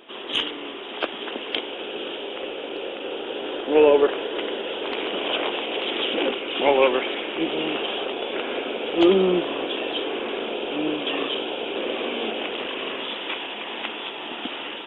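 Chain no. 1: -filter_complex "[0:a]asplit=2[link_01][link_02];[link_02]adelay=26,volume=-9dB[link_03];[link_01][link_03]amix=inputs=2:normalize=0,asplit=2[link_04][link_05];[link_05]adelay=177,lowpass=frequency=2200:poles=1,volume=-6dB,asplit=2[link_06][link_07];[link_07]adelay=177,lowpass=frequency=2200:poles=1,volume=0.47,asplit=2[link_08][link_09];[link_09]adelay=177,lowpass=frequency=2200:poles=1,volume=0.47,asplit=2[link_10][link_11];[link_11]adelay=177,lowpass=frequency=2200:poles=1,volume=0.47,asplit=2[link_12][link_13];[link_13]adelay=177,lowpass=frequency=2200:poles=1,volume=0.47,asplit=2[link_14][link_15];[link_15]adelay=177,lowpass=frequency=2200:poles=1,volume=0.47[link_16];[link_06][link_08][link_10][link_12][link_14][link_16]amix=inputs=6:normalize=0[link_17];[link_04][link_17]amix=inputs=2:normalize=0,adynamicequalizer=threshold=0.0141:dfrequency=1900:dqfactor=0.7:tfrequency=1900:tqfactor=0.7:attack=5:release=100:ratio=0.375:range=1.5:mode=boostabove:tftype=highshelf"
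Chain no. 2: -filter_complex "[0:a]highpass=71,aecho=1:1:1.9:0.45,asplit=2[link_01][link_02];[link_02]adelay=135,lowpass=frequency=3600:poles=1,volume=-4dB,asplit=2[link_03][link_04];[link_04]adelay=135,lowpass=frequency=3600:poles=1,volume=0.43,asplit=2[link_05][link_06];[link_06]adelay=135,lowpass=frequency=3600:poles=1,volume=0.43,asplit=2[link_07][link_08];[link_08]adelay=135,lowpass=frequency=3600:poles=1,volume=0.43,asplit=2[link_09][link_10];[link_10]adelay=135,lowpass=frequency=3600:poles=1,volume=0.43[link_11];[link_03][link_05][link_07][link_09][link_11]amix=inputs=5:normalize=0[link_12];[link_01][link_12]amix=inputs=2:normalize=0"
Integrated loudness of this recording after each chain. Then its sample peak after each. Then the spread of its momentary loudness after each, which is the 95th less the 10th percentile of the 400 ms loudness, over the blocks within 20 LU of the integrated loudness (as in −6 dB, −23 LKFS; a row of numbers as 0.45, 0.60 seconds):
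−22.5, −22.5 LKFS; −3.5, −1.5 dBFS; 12, 13 LU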